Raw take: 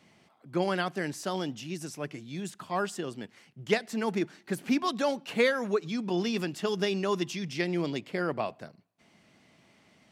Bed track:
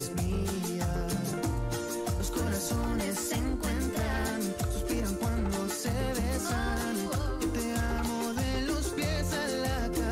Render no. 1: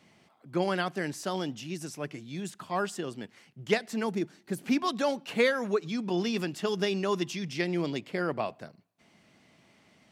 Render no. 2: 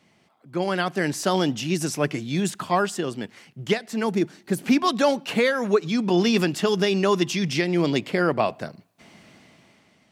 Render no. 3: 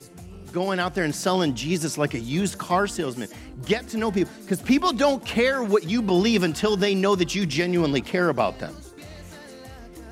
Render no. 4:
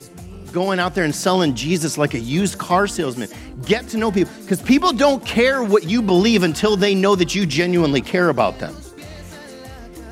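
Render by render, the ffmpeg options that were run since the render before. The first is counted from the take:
-filter_complex "[0:a]asettb=1/sr,asplit=3[a][b][c];[a]atrim=end=4.074[d];[b]atrim=start=4.07:end=4.66,asetpts=PTS-STARTPTS,afade=t=in:d=0.004:c=qsin,afade=t=out:st=0.586:d=0.004:c=qsin,equalizer=f=1.7k:w=0.41:g=-6.5[e];[c]atrim=start=4.656[f];[d][e]acrossfade=d=0.004:c1=hsin:c2=qsin[g];[g][f]acrossfade=d=0.004:c1=qsin:c2=hsin"
-af "dynaudnorm=f=290:g=7:m=14.5dB,alimiter=limit=-9.5dB:level=0:latency=1:release=483"
-filter_complex "[1:a]volume=-11.5dB[a];[0:a][a]amix=inputs=2:normalize=0"
-af "volume=5.5dB"

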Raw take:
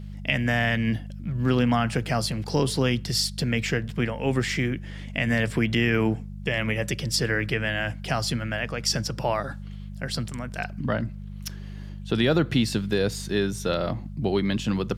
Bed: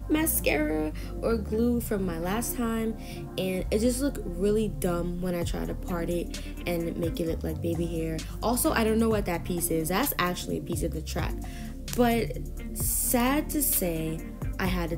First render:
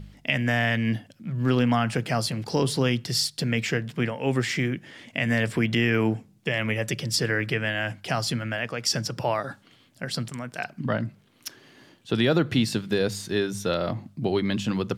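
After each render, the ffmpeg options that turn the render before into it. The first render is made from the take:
-af "bandreject=f=50:t=h:w=4,bandreject=f=100:t=h:w=4,bandreject=f=150:t=h:w=4,bandreject=f=200:t=h:w=4"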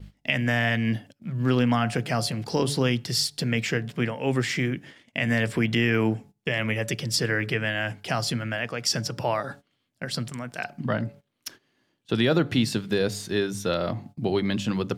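-af "bandreject=f=142.1:t=h:w=4,bandreject=f=284.2:t=h:w=4,bandreject=f=426.3:t=h:w=4,bandreject=f=568.4:t=h:w=4,bandreject=f=710.5:t=h:w=4,bandreject=f=852.6:t=h:w=4,agate=range=-17dB:threshold=-43dB:ratio=16:detection=peak"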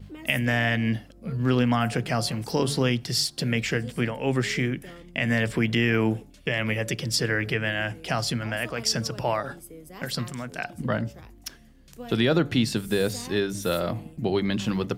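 -filter_complex "[1:a]volume=-17dB[a];[0:a][a]amix=inputs=2:normalize=0"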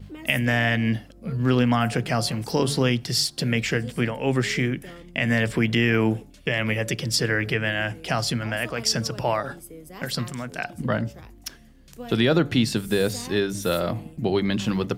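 -af "volume=2dB"

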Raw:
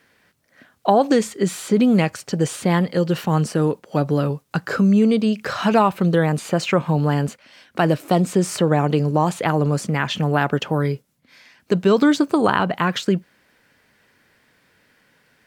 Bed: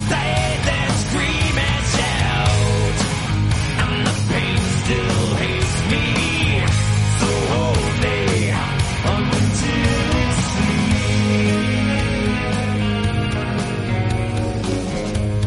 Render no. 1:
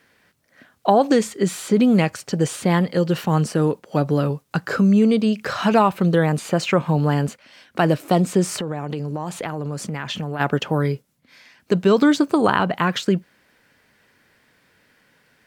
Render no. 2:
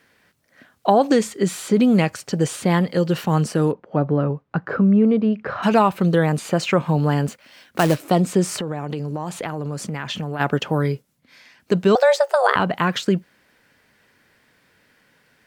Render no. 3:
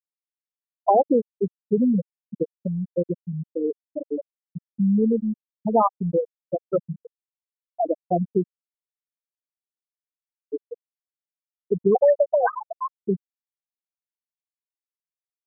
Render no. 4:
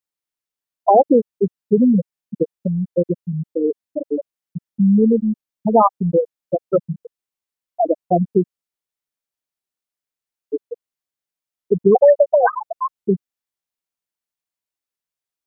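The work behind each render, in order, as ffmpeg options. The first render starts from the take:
-filter_complex "[0:a]asplit=3[a][b][c];[a]afade=t=out:st=8.57:d=0.02[d];[b]acompressor=threshold=-23dB:ratio=5:attack=3.2:release=140:knee=1:detection=peak,afade=t=in:st=8.57:d=0.02,afade=t=out:st=10.39:d=0.02[e];[c]afade=t=in:st=10.39:d=0.02[f];[d][e][f]amix=inputs=3:normalize=0"
-filter_complex "[0:a]asplit=3[a][b][c];[a]afade=t=out:st=3.71:d=0.02[d];[b]lowpass=1.6k,afade=t=in:st=3.71:d=0.02,afade=t=out:st=5.62:d=0.02[e];[c]afade=t=in:st=5.62:d=0.02[f];[d][e][f]amix=inputs=3:normalize=0,asettb=1/sr,asplit=3[g][h][i];[g]atrim=end=7.284[j];[h]atrim=start=7.28:end=7.97,asetpts=PTS-STARTPTS,afade=t=in:d=0.004:c=qsin,afade=t=out:st=0.686:d=0.004:c=qsin,acrusher=bits=3:mode=log:mix=0:aa=0.000001[k];[i]atrim=start=7.966[l];[j][k]acrossfade=d=0.004:c1=hsin:c2=qsin[m];[m][l]acrossfade=d=0.004:c1=qsin:c2=hsin,asettb=1/sr,asplit=3[n][o][p];[n]atrim=end=11.954[q];[o]atrim=start=11.95:end=12.56,asetpts=PTS-STARTPTS,afade=t=in:d=0.004:c=qsin,afade=t=out:st=0.606:d=0.004:c=qsin,afreqshift=280[r];[p]atrim=start=12.556[s];[q][r]acrossfade=d=0.004:c1=hsin:c2=qsin[t];[t][s]acrossfade=d=0.004:c1=qsin:c2=hsin"
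-af "highpass=f=270:p=1,afftfilt=real='re*gte(hypot(re,im),0.708)':imag='im*gte(hypot(re,im),0.708)':win_size=1024:overlap=0.75"
-af "volume=6dB,alimiter=limit=-2dB:level=0:latency=1"

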